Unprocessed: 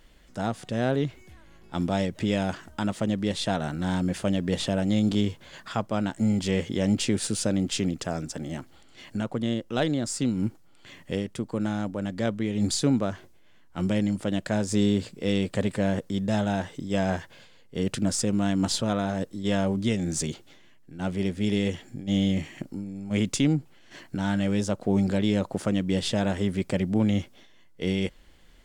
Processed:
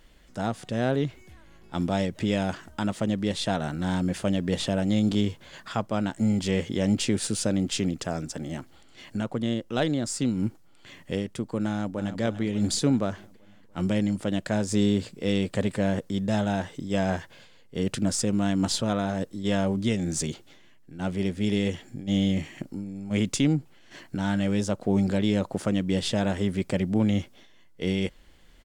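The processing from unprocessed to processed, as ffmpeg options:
-filter_complex "[0:a]asplit=2[s0][s1];[s1]afade=t=in:st=11.68:d=0.01,afade=t=out:st=12.2:d=0.01,aecho=0:1:290|580|870|1160|1450|1740|2030:0.281838|0.169103|0.101462|0.0608771|0.0365262|0.0219157|0.0131494[s2];[s0][s2]amix=inputs=2:normalize=0"

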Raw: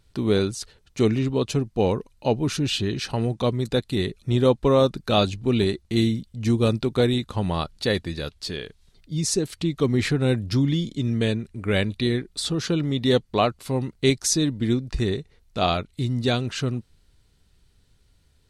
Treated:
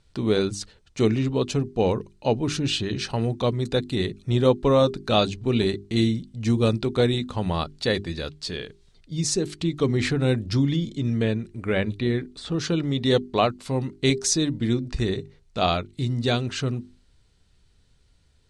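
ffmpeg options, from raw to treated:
-filter_complex "[0:a]asettb=1/sr,asplit=3[s0][s1][s2];[s0]atrim=end=10.764[s3];[s1]atrim=start=10.76:end=12.52,asetpts=PTS-STARTPTS,afade=t=in:d=0.004:c=qsin,afade=t=out:st=1.756:d=0.004:c=qsin,acrossover=split=2700[s4][s5];[s5]acompressor=threshold=0.00708:ratio=4:attack=1:release=60[s6];[s4][s6]amix=inputs=2:normalize=0[s7];[s2]atrim=start=12.516[s8];[s3][s7]acrossfade=d=0.004:c1=hsin:c2=qsin[s9];[s9][s8]acrossfade=d=0.004:c1=qsin:c2=hsin,lowpass=f=9200:w=0.5412,lowpass=f=9200:w=1.3066,bandreject=f=50:t=h:w=6,bandreject=f=100:t=h:w=6,bandreject=f=150:t=h:w=6,bandreject=f=200:t=h:w=6,bandreject=f=250:t=h:w=6,bandreject=f=300:t=h:w=6,bandreject=f=350:t=h:w=6,bandreject=f=400:t=h:w=6"

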